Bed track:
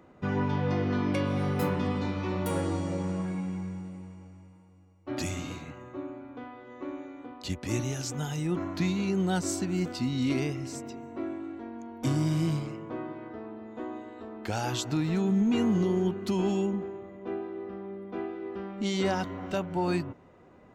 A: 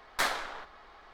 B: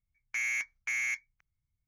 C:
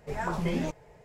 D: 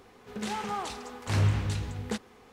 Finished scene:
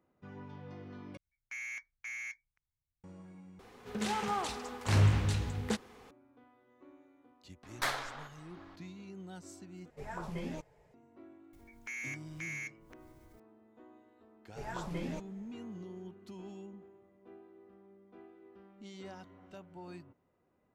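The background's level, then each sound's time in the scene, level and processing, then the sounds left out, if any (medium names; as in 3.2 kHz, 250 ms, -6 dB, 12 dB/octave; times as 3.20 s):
bed track -20 dB
1.17 s: replace with B -9.5 dB + treble shelf 7.1 kHz -4 dB
3.59 s: replace with D -0.5 dB
7.63 s: add A -4.5 dB
9.90 s: replace with C -10.5 dB
11.53 s: add B -9.5 dB + upward compressor 4:1, threshold -37 dBFS
14.49 s: add C -9.5 dB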